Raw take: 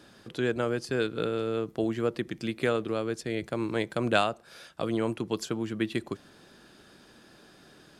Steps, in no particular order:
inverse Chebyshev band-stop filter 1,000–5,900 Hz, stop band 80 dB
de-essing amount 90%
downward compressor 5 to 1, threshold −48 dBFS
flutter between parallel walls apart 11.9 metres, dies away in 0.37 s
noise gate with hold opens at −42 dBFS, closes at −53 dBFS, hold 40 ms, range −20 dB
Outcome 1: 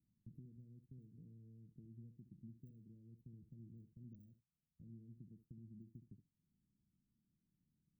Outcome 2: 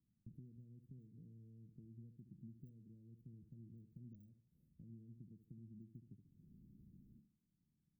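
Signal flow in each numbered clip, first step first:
de-essing, then downward compressor, then flutter between parallel walls, then noise gate with hold, then inverse Chebyshev band-stop filter
noise gate with hold, then flutter between parallel walls, then de-essing, then downward compressor, then inverse Chebyshev band-stop filter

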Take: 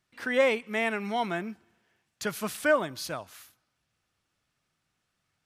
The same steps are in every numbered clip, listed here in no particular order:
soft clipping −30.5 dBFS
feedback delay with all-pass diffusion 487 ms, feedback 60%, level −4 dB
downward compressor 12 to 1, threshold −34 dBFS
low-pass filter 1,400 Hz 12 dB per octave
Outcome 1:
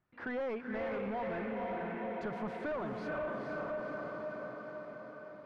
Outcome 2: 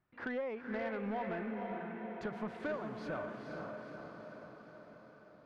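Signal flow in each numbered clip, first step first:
feedback delay with all-pass diffusion, then soft clipping, then low-pass filter, then downward compressor
low-pass filter, then downward compressor, then feedback delay with all-pass diffusion, then soft clipping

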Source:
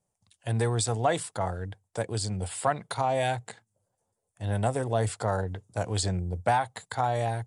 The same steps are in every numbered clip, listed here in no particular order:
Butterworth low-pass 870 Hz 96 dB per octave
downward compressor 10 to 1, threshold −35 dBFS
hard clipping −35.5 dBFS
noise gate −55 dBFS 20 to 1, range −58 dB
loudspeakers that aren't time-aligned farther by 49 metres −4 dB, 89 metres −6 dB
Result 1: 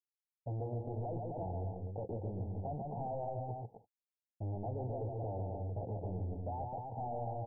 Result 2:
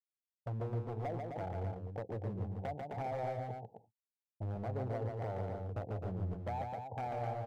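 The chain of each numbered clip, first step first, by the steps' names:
hard clipping, then loudspeakers that aren't time-aligned, then noise gate, then Butterworth low-pass, then downward compressor
noise gate, then Butterworth low-pass, then downward compressor, then hard clipping, then loudspeakers that aren't time-aligned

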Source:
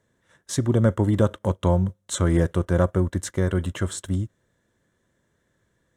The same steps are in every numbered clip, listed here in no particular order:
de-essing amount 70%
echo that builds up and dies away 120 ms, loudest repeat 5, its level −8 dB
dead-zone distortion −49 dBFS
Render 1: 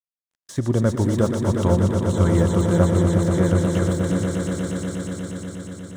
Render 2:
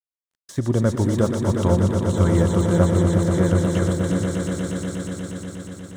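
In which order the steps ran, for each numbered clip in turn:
dead-zone distortion, then echo that builds up and dies away, then de-essing
echo that builds up and dies away, then de-essing, then dead-zone distortion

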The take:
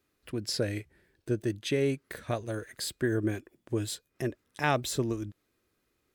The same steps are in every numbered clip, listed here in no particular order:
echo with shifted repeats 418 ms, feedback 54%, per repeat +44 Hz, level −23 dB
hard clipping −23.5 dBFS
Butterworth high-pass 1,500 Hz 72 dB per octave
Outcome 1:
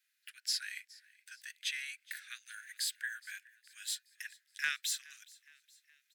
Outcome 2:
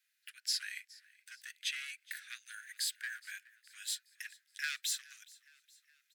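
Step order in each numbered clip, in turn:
Butterworth high-pass, then hard clipping, then echo with shifted repeats
hard clipping, then echo with shifted repeats, then Butterworth high-pass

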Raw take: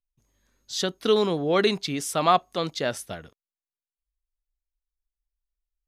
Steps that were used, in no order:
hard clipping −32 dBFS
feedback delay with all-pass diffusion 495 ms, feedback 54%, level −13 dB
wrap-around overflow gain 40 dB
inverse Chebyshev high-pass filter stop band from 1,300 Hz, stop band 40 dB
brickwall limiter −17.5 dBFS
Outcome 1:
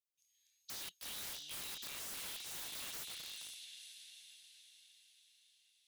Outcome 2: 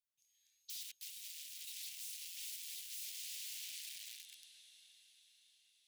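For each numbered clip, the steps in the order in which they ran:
inverse Chebyshev high-pass filter, then brickwall limiter, then feedback delay with all-pass diffusion, then hard clipping, then wrap-around overflow
feedback delay with all-pass diffusion, then brickwall limiter, then hard clipping, then wrap-around overflow, then inverse Chebyshev high-pass filter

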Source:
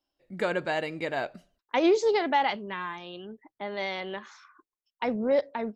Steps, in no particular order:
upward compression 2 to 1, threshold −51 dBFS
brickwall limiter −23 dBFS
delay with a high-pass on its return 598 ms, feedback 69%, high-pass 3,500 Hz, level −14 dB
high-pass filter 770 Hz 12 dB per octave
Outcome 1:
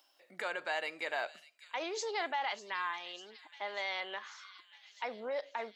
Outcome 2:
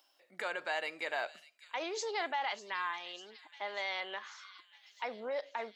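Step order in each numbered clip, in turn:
delay with a high-pass on its return, then brickwall limiter, then high-pass filter, then upward compression
upward compression, then delay with a high-pass on its return, then brickwall limiter, then high-pass filter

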